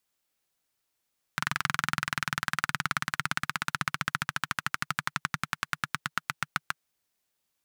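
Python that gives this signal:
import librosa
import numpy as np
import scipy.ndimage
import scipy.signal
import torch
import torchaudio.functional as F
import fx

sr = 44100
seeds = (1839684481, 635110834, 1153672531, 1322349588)

y = fx.engine_single_rev(sr, seeds[0], length_s=5.37, rpm=2700, resonances_hz=(150.0, 1400.0), end_rpm=800)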